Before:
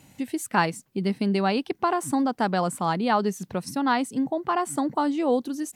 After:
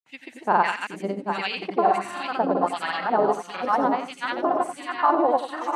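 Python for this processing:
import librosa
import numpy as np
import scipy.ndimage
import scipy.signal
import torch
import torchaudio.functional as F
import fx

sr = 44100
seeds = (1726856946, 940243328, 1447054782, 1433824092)

p1 = fx.reverse_delay_fb(x, sr, ms=340, feedback_pct=59, wet_db=-3.5)
p2 = fx.filter_lfo_bandpass(p1, sr, shape='sine', hz=1.5, low_hz=480.0, high_hz=2900.0, q=1.9)
p3 = fx.granulator(p2, sr, seeds[0], grain_ms=100.0, per_s=20.0, spray_ms=100.0, spread_st=0)
p4 = p3 + fx.echo_single(p3, sr, ms=90, db=-11.0, dry=0)
y = p4 * librosa.db_to_amplitude(8.0)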